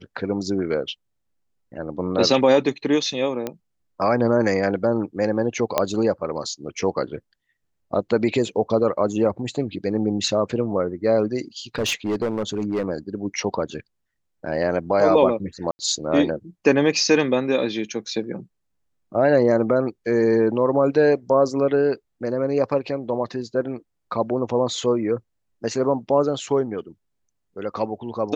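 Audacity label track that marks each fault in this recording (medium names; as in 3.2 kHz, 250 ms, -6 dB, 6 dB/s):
3.470000	3.470000	pop -13 dBFS
5.780000	5.780000	pop -5 dBFS
11.750000	12.850000	clipped -19 dBFS
15.710000	15.790000	dropout 80 ms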